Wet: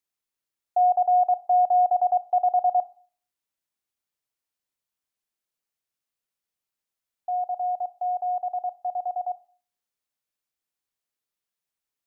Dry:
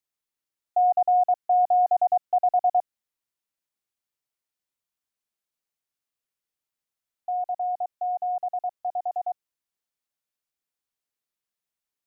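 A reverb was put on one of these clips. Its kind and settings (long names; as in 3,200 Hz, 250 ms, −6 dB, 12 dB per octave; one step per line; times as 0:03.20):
four-comb reverb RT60 0.44 s, combs from 32 ms, DRR 17.5 dB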